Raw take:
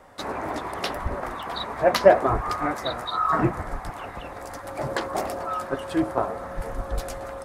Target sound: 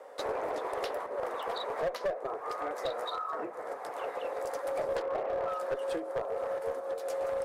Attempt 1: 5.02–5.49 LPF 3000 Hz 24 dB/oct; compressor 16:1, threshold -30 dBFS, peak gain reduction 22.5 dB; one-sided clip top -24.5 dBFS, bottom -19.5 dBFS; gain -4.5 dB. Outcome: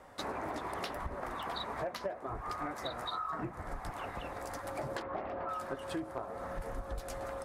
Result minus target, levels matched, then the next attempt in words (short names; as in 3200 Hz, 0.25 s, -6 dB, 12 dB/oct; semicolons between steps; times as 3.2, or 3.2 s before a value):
500 Hz band -4.0 dB
5.02–5.49 LPF 3000 Hz 24 dB/oct; compressor 16:1, threshold -30 dBFS, peak gain reduction 22.5 dB; resonant high-pass 480 Hz, resonance Q 4.8; one-sided clip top -24.5 dBFS, bottom -19.5 dBFS; gain -4.5 dB